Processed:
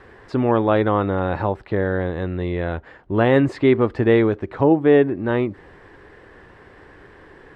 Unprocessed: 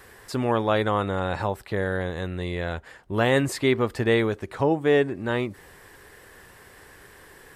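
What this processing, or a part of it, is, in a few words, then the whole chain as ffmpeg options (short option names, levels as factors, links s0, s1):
phone in a pocket: -af "lowpass=3800,equalizer=f=310:t=o:w=0.5:g=4.5,highshelf=f=2200:g=-9.5,volume=1.78"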